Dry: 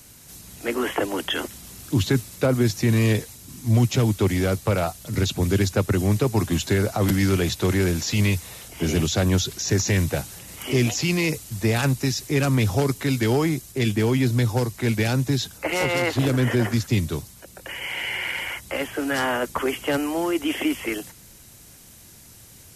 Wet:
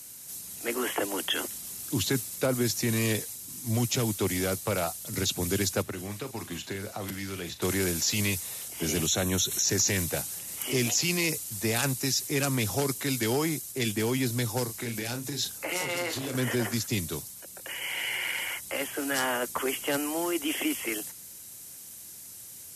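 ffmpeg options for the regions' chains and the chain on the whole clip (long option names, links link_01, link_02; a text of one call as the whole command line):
ffmpeg -i in.wav -filter_complex "[0:a]asettb=1/sr,asplit=3[link_01][link_02][link_03];[link_01]atrim=end=5.824[link_04];[link_02]atrim=start=5.82:end=7.62,asetpts=PTS-STARTPTS,afade=type=in:duration=0.004:curve=qsin,afade=type=out:start_time=1.796:duration=0.004:curve=qsin,bass=frequency=250:gain=1,treble=frequency=4000:gain=-11,acrossover=split=950|2900[link_05][link_06][link_07];[link_05]acompressor=threshold=-28dB:ratio=4[link_08];[link_06]acompressor=threshold=-40dB:ratio=4[link_09];[link_07]acompressor=threshold=-40dB:ratio=4[link_10];[link_08][link_09][link_10]amix=inputs=3:normalize=0,asplit=2[link_11][link_12];[link_12]adelay=40,volume=-11.5dB[link_13];[link_11][link_13]amix=inputs=2:normalize=0,atrim=end_sample=79380[link_14];[link_03]atrim=start=7.616[link_15];[link_04][link_14]acrossfade=duration=0.004:curve1=hsin:curve2=qsin[link_16];[link_16][link_15]acrossfade=duration=0.004:curve1=qsin:curve2=hsin,asettb=1/sr,asplit=3[link_17][link_18][link_19];[link_17]atrim=end=9.064[link_20];[link_18]atrim=start=9.06:end=9.64,asetpts=PTS-STARTPTS,afade=type=in:duration=0.004:curve=qsin,afade=type=out:start_time=0.576:duration=0.004:curve=qsin,asuperstop=centerf=4800:order=8:qfactor=4.9,acompressor=mode=upward:threshold=-23dB:ratio=2.5:attack=3.2:release=140:knee=2.83:detection=peak[link_21];[link_19]atrim=start=9.636[link_22];[link_20][link_21]acrossfade=duration=0.004:curve1=hsin:curve2=qsin[link_23];[link_23][link_22]acrossfade=duration=0.004:curve1=qsin:curve2=hsin,asettb=1/sr,asplit=3[link_24][link_25][link_26];[link_24]atrim=end=14.644[link_27];[link_25]atrim=start=14.64:end=16.35,asetpts=PTS-STARTPTS,afade=type=in:duration=0.004:curve=qsin,afade=type=out:start_time=1.706:duration=0.004:curve=qsin,acompressor=threshold=-23dB:ratio=6:attack=3.2:release=140:knee=1:detection=peak,asplit=2[link_28][link_29];[link_29]adelay=34,volume=-7dB[link_30];[link_28][link_30]amix=inputs=2:normalize=0,atrim=end_sample=75411[link_31];[link_26]atrim=start=16.346[link_32];[link_27][link_31]acrossfade=duration=0.004:curve1=hsin:curve2=qsin[link_33];[link_33][link_32]acrossfade=duration=0.004:curve1=qsin:curve2=hsin,highpass=frequency=180:poles=1,equalizer=frequency=11000:width=0.41:gain=11,volume=-5.5dB" out.wav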